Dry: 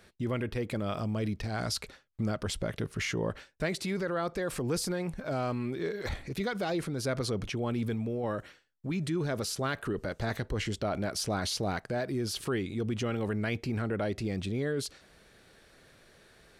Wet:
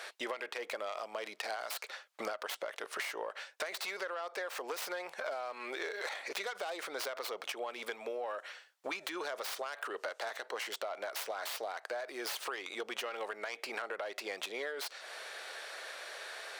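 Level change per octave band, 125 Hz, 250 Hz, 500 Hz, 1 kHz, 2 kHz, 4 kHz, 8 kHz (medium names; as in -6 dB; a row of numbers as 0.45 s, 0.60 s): under -40 dB, -19.0 dB, -6.0 dB, -2.0 dB, -0.5 dB, -2.5 dB, -5.5 dB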